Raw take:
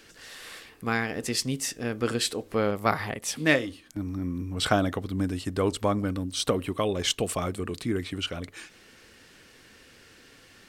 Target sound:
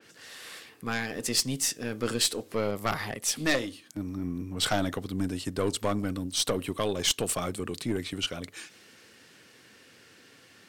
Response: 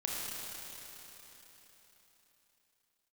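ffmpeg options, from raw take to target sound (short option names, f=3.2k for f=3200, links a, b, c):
-af "highpass=f=100:w=0.5412,highpass=f=100:w=1.3066,aeval=exprs='(tanh(8.91*val(0)+0.45)-tanh(0.45))/8.91':c=same,adynamicequalizer=threshold=0.00501:dfrequency=3000:dqfactor=0.7:tfrequency=3000:tqfactor=0.7:attack=5:release=100:ratio=0.375:range=3:mode=boostabove:tftype=highshelf"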